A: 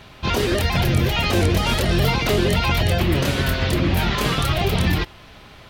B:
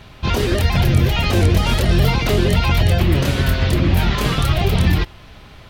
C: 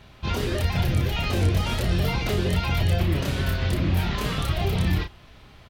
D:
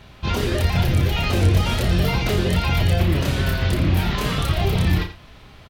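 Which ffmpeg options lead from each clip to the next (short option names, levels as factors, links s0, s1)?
-af "lowshelf=f=140:g=7.5"
-filter_complex "[0:a]asplit=2[s0][s1];[s1]adelay=33,volume=0.447[s2];[s0][s2]amix=inputs=2:normalize=0,volume=0.376"
-af "aecho=1:1:85:0.237,volume=1.58"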